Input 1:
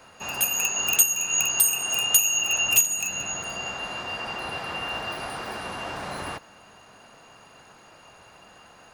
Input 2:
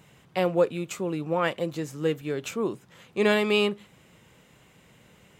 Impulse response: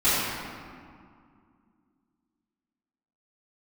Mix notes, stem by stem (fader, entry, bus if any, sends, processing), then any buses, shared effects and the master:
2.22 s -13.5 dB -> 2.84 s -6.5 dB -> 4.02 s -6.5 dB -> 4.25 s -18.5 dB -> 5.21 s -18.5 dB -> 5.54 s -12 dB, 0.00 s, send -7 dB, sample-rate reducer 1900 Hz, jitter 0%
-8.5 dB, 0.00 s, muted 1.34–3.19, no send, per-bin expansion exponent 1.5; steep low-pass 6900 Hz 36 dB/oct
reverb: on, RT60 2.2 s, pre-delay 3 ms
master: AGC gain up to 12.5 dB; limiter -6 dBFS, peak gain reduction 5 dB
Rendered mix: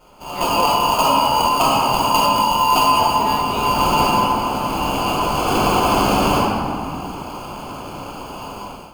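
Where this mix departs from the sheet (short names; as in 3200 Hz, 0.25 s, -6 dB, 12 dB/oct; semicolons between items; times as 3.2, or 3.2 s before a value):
stem 1 -13.5 dB -> -5.5 dB; stem 2: missing per-bin expansion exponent 1.5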